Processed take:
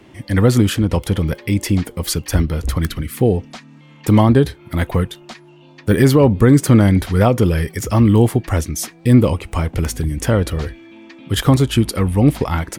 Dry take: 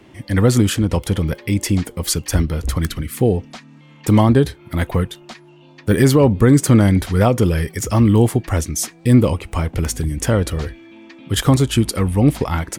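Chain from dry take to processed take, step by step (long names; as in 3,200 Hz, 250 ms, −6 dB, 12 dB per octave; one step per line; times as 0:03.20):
dynamic equaliser 7,500 Hz, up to −5 dB, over −40 dBFS, Q 1.2
level +1 dB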